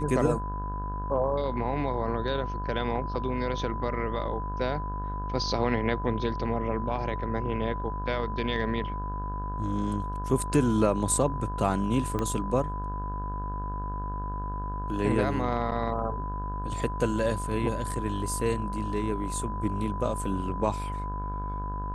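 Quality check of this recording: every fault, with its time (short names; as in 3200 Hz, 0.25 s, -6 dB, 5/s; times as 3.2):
buzz 50 Hz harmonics 34 -34 dBFS
tone 1000 Hz -35 dBFS
12.19 pop -17 dBFS
15.71–15.72 gap 8.1 ms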